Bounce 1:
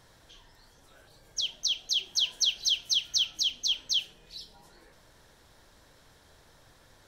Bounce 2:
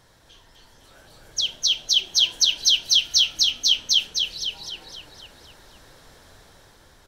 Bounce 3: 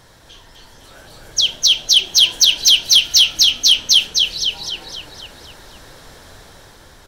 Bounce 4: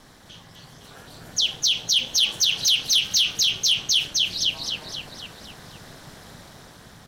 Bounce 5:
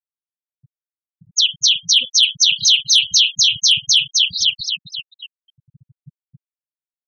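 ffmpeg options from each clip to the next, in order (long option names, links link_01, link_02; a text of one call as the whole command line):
ffmpeg -i in.wav -filter_complex "[0:a]dynaudnorm=framelen=190:gausssize=9:maxgain=5dB,asplit=2[link_01][link_02];[link_02]asplit=7[link_03][link_04][link_05][link_06][link_07][link_08][link_09];[link_03]adelay=255,afreqshift=-38,volume=-4dB[link_10];[link_04]adelay=510,afreqshift=-76,volume=-9.7dB[link_11];[link_05]adelay=765,afreqshift=-114,volume=-15.4dB[link_12];[link_06]adelay=1020,afreqshift=-152,volume=-21dB[link_13];[link_07]adelay=1275,afreqshift=-190,volume=-26.7dB[link_14];[link_08]adelay=1530,afreqshift=-228,volume=-32.4dB[link_15];[link_09]adelay=1785,afreqshift=-266,volume=-38.1dB[link_16];[link_10][link_11][link_12][link_13][link_14][link_15][link_16]amix=inputs=7:normalize=0[link_17];[link_01][link_17]amix=inputs=2:normalize=0,volume=2dB" out.wav
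ffmpeg -i in.wav -af "aeval=exprs='0.596*sin(PI/2*1.78*val(0)/0.596)':channel_layout=same" out.wav
ffmpeg -i in.wav -af "alimiter=limit=-10.5dB:level=0:latency=1:release=43,aeval=exprs='val(0)*sin(2*PI*140*n/s)':channel_layout=same" out.wav
ffmpeg -i in.wav -af "afftfilt=real='re*gte(hypot(re,im),0.0631)':imag='im*gte(hypot(re,im),0.0631)':win_size=1024:overlap=0.75,volume=7dB" out.wav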